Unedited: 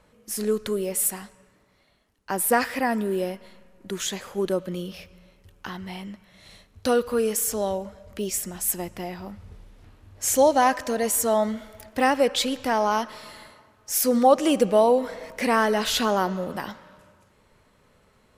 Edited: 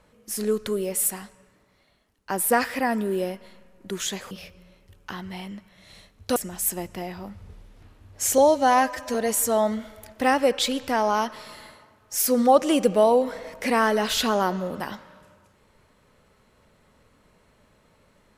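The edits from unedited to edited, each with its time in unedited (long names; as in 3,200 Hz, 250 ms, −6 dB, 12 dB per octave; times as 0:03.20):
0:04.31–0:04.87: remove
0:06.92–0:08.38: remove
0:10.40–0:10.91: time-stretch 1.5×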